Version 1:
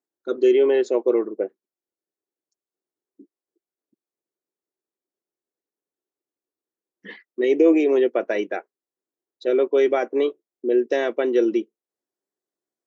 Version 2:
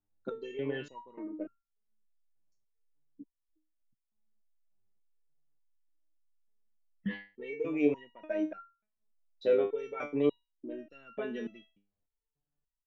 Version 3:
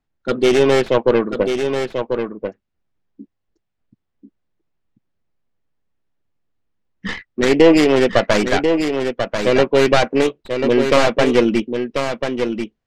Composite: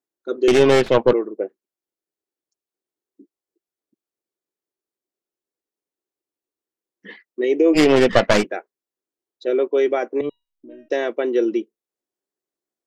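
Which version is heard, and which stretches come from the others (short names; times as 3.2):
1
0.48–1.13 from 3
7.76–8.43 from 3, crossfade 0.06 s
10.21–10.9 from 2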